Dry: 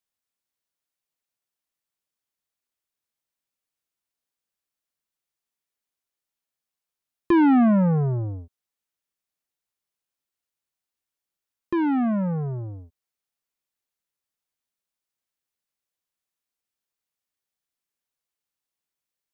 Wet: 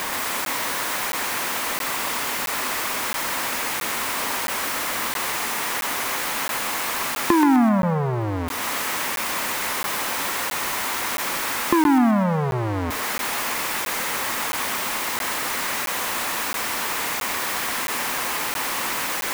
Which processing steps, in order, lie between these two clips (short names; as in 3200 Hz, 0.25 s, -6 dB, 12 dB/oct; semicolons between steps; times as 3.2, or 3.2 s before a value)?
zero-crossing step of -29.5 dBFS; compressor 12:1, threshold -33 dBFS, peak gain reduction 17 dB; graphic EQ 250/500/1000/2000 Hz +9/+5/+12/+8 dB; thinning echo 0.128 s, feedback 48%, high-pass 860 Hz, level -3 dB; crackling interface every 0.67 s, samples 512, zero, from 0.45; gain +6 dB